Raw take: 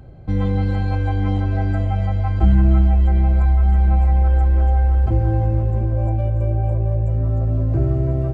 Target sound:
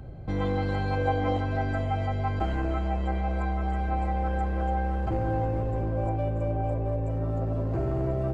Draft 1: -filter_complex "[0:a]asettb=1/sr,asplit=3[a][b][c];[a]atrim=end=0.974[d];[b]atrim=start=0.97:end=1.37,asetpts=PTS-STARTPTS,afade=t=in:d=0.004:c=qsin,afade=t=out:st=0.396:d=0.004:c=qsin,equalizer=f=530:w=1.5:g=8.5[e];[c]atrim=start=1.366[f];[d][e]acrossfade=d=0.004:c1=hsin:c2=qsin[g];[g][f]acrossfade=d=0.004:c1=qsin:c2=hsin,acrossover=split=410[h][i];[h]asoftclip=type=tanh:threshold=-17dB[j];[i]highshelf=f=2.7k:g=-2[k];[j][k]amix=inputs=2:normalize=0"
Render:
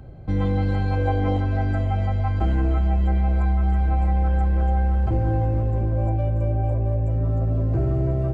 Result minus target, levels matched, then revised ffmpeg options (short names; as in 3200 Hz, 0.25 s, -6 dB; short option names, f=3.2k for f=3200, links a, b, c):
soft clip: distortion -6 dB
-filter_complex "[0:a]asettb=1/sr,asplit=3[a][b][c];[a]atrim=end=0.974[d];[b]atrim=start=0.97:end=1.37,asetpts=PTS-STARTPTS,afade=t=in:d=0.004:c=qsin,afade=t=out:st=0.396:d=0.004:c=qsin,equalizer=f=530:w=1.5:g=8.5[e];[c]atrim=start=1.366[f];[d][e]acrossfade=d=0.004:c1=hsin:c2=qsin[g];[g][f]acrossfade=d=0.004:c1=qsin:c2=hsin,acrossover=split=410[h][i];[h]asoftclip=type=tanh:threshold=-27.5dB[j];[i]highshelf=f=2.7k:g=-2[k];[j][k]amix=inputs=2:normalize=0"